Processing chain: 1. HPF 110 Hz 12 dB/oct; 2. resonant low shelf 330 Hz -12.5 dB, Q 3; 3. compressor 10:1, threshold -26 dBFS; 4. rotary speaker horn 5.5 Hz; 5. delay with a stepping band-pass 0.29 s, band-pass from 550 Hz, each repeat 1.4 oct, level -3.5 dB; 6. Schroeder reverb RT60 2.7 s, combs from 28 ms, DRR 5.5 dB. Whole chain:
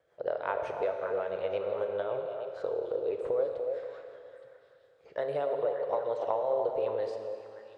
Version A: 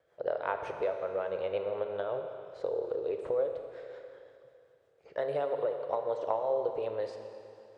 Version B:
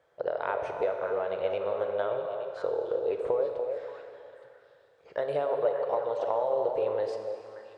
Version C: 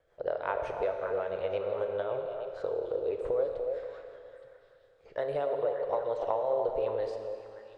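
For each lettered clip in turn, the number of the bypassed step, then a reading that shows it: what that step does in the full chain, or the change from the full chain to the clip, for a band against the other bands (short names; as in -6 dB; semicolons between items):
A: 5, momentary loudness spread change +3 LU; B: 4, loudness change +2.0 LU; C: 1, 125 Hz band +2.5 dB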